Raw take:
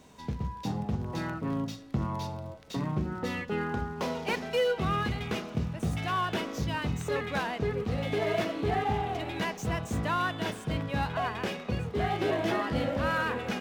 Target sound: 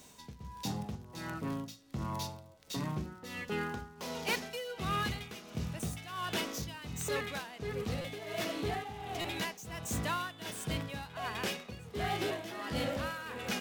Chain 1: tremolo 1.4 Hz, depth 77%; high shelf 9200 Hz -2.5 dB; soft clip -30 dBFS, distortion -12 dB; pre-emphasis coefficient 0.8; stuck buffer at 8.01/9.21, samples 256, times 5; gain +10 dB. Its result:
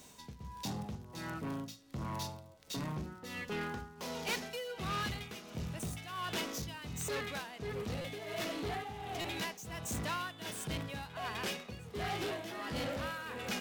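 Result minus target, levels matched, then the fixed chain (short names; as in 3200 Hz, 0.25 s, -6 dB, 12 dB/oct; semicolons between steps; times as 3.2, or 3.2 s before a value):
soft clip: distortion +12 dB
tremolo 1.4 Hz, depth 77%; high shelf 9200 Hz -2.5 dB; soft clip -21 dBFS, distortion -24 dB; pre-emphasis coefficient 0.8; stuck buffer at 8.01/9.21, samples 256, times 5; gain +10 dB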